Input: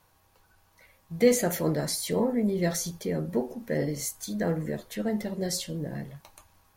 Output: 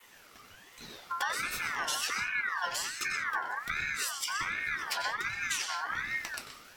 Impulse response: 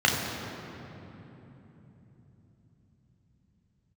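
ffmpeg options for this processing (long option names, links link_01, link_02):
-filter_complex "[0:a]equalizer=frequency=4200:width_type=o:width=1.2:gain=7.5,acompressor=threshold=-39dB:ratio=12,asplit=2[link_01][link_02];[1:a]atrim=start_sample=2205,afade=type=out:start_time=0.16:duration=0.01,atrim=end_sample=7497,adelay=91[link_03];[link_02][link_03]afir=irnorm=-1:irlink=0,volume=-18dB[link_04];[link_01][link_04]amix=inputs=2:normalize=0,adynamicequalizer=threshold=0.001:dfrequency=3100:dqfactor=1.5:tfrequency=3100:tqfactor=1.5:attack=5:release=100:ratio=0.375:range=3:mode=boostabove:tftype=bell,aeval=exprs='val(0)*sin(2*PI*1600*n/s+1600*0.25/1.3*sin(2*PI*1.3*n/s))':channel_layout=same,volume=9dB"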